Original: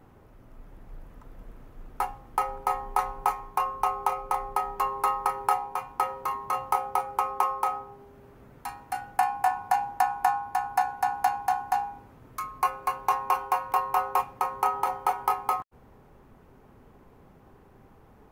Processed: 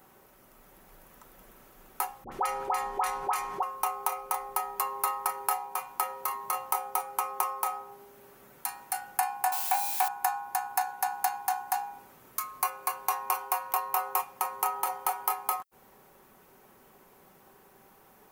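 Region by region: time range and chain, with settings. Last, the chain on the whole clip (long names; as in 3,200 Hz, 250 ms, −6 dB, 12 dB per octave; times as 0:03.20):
0:02.24–0:03.63: high-frequency loss of the air 51 metres + all-pass dispersion highs, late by 77 ms, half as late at 1,000 Hz + envelope flattener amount 50%
0:09.52–0:10.08: spike at every zero crossing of −23 dBFS + high-shelf EQ 3,400 Hz −11 dB + leveller curve on the samples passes 1
whole clip: RIAA equalisation recording; comb filter 5.3 ms, depth 32%; downward compressor 1.5 to 1, threshold −34 dBFS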